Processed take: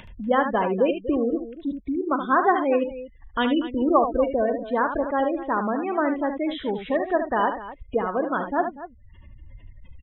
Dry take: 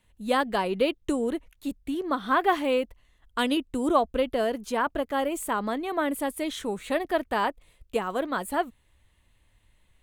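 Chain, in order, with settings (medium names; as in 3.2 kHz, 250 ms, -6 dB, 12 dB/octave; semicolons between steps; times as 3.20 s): steep low-pass 3.8 kHz 96 dB/octave; treble shelf 2.9 kHz -4 dB; spectral gate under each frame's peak -20 dB strong; upward compressor, threshold -33 dBFS; on a send: multi-tap echo 42/74/241 ms -17/-8/-14.5 dB; on the sum: trim +3.5 dB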